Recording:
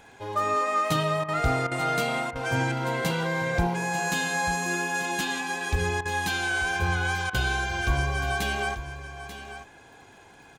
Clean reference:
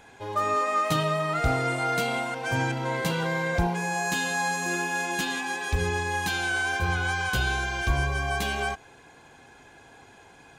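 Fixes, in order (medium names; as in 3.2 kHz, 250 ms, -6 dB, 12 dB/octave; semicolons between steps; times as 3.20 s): de-click; interpolate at 1.24/1.67/2.31/6.01/7.30 s, 43 ms; inverse comb 889 ms -12 dB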